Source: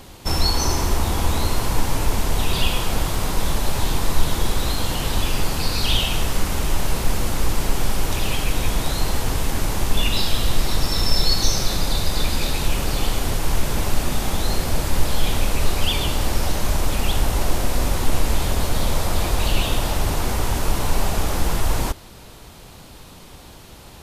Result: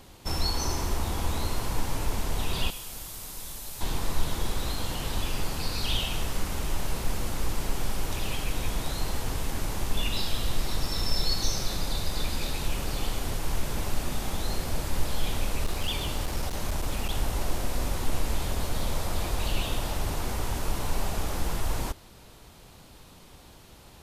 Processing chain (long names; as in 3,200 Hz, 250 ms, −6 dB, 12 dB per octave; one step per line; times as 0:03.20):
0:02.70–0:03.81: first-order pre-emphasis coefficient 0.8
0:15.64–0:17.18: asymmetric clip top −14 dBFS, bottom −9 dBFS
level −8.5 dB